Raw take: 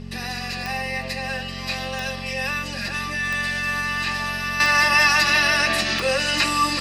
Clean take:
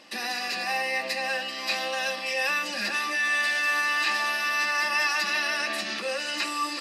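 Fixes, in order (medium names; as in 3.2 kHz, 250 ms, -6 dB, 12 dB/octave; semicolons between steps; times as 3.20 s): de-click; de-hum 45.5 Hz, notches 5; band-stop 420 Hz, Q 30; gain correction -8.5 dB, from 4.60 s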